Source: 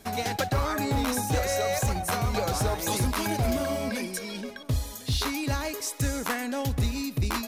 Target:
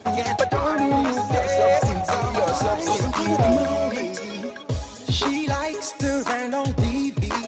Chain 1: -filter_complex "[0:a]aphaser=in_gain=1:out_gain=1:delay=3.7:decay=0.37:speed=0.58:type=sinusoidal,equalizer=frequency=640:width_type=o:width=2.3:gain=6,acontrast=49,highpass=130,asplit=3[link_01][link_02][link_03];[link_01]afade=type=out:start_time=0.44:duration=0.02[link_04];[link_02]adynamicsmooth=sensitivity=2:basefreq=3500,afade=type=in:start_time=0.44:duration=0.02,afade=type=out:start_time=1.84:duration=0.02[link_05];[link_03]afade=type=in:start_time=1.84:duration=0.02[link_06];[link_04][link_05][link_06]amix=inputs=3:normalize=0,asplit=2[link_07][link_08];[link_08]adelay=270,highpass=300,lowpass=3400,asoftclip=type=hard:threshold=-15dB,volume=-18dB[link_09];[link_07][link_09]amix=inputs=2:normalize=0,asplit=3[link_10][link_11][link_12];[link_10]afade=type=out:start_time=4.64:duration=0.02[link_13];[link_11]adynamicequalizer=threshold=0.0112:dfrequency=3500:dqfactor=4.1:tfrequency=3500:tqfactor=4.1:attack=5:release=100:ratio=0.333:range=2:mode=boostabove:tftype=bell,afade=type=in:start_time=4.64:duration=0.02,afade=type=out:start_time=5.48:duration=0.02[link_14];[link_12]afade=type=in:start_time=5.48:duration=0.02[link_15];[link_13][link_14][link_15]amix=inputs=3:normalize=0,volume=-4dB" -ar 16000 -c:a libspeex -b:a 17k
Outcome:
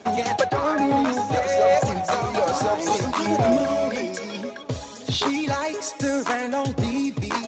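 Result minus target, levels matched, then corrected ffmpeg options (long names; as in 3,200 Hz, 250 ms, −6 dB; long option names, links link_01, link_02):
125 Hz band −4.0 dB
-filter_complex "[0:a]aphaser=in_gain=1:out_gain=1:delay=3.7:decay=0.37:speed=0.58:type=sinusoidal,equalizer=frequency=640:width_type=o:width=2.3:gain=6,acontrast=49,highpass=41,asplit=3[link_01][link_02][link_03];[link_01]afade=type=out:start_time=0.44:duration=0.02[link_04];[link_02]adynamicsmooth=sensitivity=2:basefreq=3500,afade=type=in:start_time=0.44:duration=0.02,afade=type=out:start_time=1.84:duration=0.02[link_05];[link_03]afade=type=in:start_time=1.84:duration=0.02[link_06];[link_04][link_05][link_06]amix=inputs=3:normalize=0,asplit=2[link_07][link_08];[link_08]adelay=270,highpass=300,lowpass=3400,asoftclip=type=hard:threshold=-15dB,volume=-18dB[link_09];[link_07][link_09]amix=inputs=2:normalize=0,asplit=3[link_10][link_11][link_12];[link_10]afade=type=out:start_time=4.64:duration=0.02[link_13];[link_11]adynamicequalizer=threshold=0.0112:dfrequency=3500:dqfactor=4.1:tfrequency=3500:tqfactor=4.1:attack=5:release=100:ratio=0.333:range=2:mode=boostabove:tftype=bell,afade=type=in:start_time=4.64:duration=0.02,afade=type=out:start_time=5.48:duration=0.02[link_14];[link_12]afade=type=in:start_time=5.48:duration=0.02[link_15];[link_13][link_14][link_15]amix=inputs=3:normalize=0,volume=-4dB" -ar 16000 -c:a libspeex -b:a 17k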